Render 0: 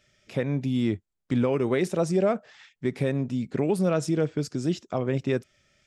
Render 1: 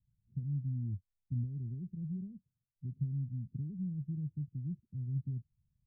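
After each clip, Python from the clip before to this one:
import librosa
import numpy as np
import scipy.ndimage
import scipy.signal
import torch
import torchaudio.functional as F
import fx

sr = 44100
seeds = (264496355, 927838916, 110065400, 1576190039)

y = scipy.signal.sosfilt(scipy.signal.cheby2(4, 70, 680.0, 'lowpass', fs=sr, output='sos'), x)
y = F.gain(torch.from_numpy(y), -3.5).numpy()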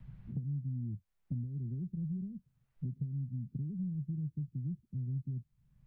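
y = fx.peak_eq(x, sr, hz=90.0, db=-12.5, octaves=0.41)
y = fx.band_squash(y, sr, depth_pct=100)
y = F.gain(torch.from_numpy(y), 1.0).numpy()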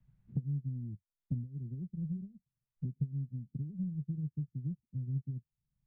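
y = fx.upward_expand(x, sr, threshold_db=-47.0, expansion=2.5)
y = F.gain(torch.from_numpy(y), 5.0).numpy()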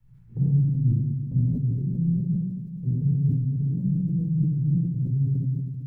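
y = fx.room_shoebox(x, sr, seeds[0], volume_m3=1600.0, walls='mixed', distance_m=4.3)
y = fx.sustainer(y, sr, db_per_s=38.0)
y = F.gain(torch.from_numpy(y), 2.0).numpy()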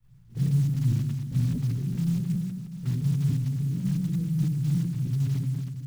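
y = fx.block_float(x, sr, bits=5)
y = F.gain(torch.from_numpy(y), -2.5).numpy()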